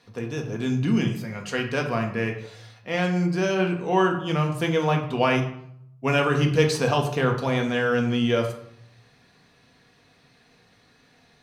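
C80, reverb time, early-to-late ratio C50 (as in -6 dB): 11.0 dB, 0.70 s, 8.5 dB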